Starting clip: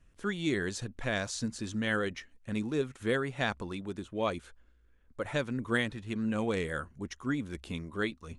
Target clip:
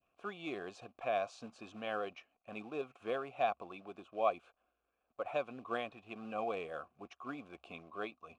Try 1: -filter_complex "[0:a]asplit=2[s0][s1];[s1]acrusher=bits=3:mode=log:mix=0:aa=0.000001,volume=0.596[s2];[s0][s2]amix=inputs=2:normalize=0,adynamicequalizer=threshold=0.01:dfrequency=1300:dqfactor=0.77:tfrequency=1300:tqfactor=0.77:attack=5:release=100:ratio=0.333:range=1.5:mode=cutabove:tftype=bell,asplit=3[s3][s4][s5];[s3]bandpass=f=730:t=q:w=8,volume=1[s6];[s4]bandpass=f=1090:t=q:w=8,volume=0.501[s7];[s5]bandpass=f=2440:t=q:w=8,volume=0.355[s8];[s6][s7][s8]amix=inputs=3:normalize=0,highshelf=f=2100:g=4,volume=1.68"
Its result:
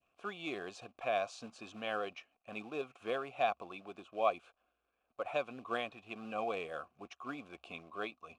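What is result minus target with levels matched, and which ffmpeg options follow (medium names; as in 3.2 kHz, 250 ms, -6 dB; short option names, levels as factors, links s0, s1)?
4 kHz band +3.5 dB
-filter_complex "[0:a]asplit=2[s0][s1];[s1]acrusher=bits=3:mode=log:mix=0:aa=0.000001,volume=0.596[s2];[s0][s2]amix=inputs=2:normalize=0,adynamicequalizer=threshold=0.01:dfrequency=1300:dqfactor=0.77:tfrequency=1300:tqfactor=0.77:attack=5:release=100:ratio=0.333:range=1.5:mode=cutabove:tftype=bell,asplit=3[s3][s4][s5];[s3]bandpass=f=730:t=q:w=8,volume=1[s6];[s4]bandpass=f=1090:t=q:w=8,volume=0.501[s7];[s5]bandpass=f=2440:t=q:w=8,volume=0.355[s8];[s6][s7][s8]amix=inputs=3:normalize=0,highshelf=f=2100:g=-2,volume=1.68"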